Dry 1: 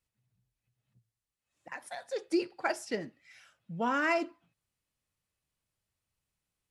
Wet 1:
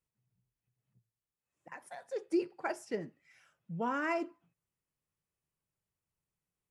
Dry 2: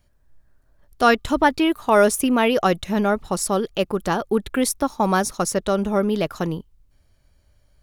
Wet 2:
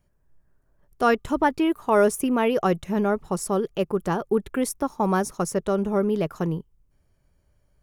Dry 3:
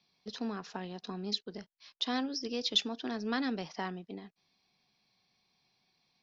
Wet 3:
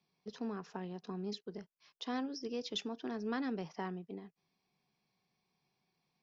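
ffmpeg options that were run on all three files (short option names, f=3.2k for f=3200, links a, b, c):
-af "equalizer=f=160:t=o:w=0.67:g=7,equalizer=f=400:t=o:w=0.67:g=6,equalizer=f=1k:t=o:w=0.67:g=3,equalizer=f=4k:t=o:w=0.67:g=-7,volume=-6.5dB"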